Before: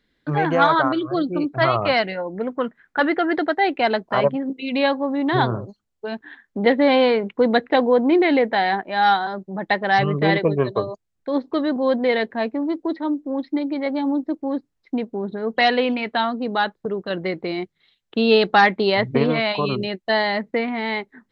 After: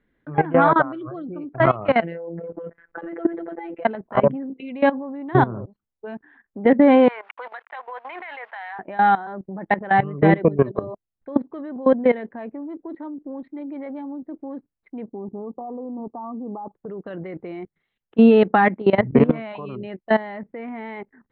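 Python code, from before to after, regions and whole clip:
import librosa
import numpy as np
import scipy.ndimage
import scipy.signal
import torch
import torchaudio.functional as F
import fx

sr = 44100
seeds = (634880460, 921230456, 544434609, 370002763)

y = fx.chain(x, sr, fx.peak_eq(hz=490.0, db=12.5, octaves=0.61),
    fx.over_compress(threshold_db=-20.0, ratio=-0.5),
    fx.robotise(hz=168.0), at=(2.01, 3.85))
y = fx.chain(y, sr, fx.delta_hold(step_db=-39.5),
    fx.highpass(hz=920.0, slope=24),
    fx.band_squash(depth_pct=100), at=(7.08, 8.79))
y = fx.chain(y, sr, fx.cheby_ripple(hz=1200.0, ripple_db=6),
    fx.peak_eq(hz=340.0, db=-2.0, octaves=2.4), at=(15.08, 16.75))
y = fx.level_steps(y, sr, step_db=18)
y = fx.dynamic_eq(y, sr, hz=220.0, q=1.2, threshold_db=-36.0, ratio=4.0, max_db=6)
y = scipy.signal.sosfilt(scipy.signal.bessel(6, 1700.0, 'lowpass', norm='mag', fs=sr, output='sos'), y)
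y = y * librosa.db_to_amplitude(4.0)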